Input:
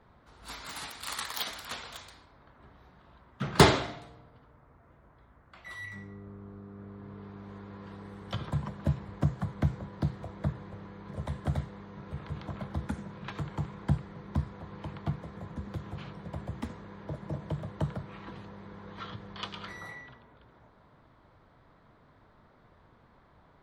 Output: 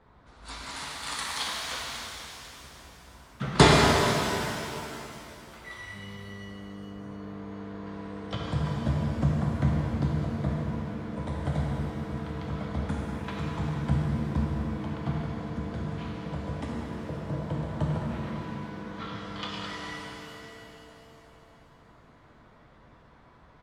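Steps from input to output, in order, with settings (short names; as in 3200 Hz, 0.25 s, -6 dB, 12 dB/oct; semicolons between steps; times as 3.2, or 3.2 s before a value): downsampling 22050 Hz; shimmer reverb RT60 2.9 s, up +7 st, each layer -8 dB, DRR -2.5 dB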